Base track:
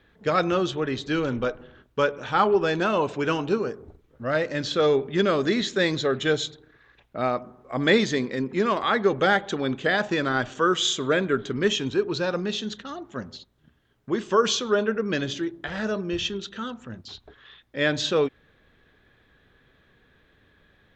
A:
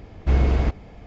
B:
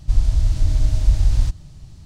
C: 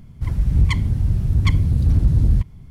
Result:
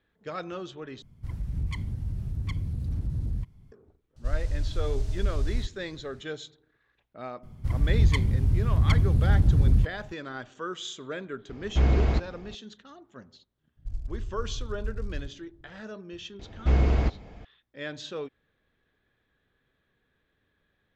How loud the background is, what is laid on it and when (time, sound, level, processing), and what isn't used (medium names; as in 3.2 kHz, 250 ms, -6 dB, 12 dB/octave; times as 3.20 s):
base track -13.5 dB
1.02 s: replace with C -12.5 dB + peak limiter -11.5 dBFS
4.16 s: add B -11.5 dB
7.43 s: add C -4.5 dB
11.49 s: add A -3 dB
13.77 s: add B -18 dB + local Wiener filter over 41 samples
16.39 s: add A -3 dB